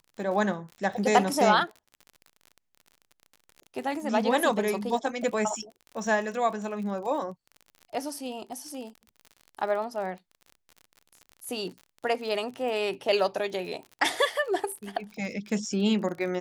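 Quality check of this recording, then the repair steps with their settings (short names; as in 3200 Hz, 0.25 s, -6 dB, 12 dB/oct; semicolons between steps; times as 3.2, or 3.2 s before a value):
crackle 46/s -37 dBFS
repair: de-click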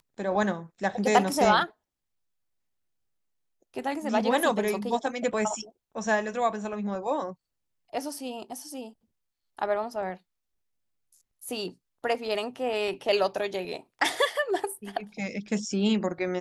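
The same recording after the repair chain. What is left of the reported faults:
none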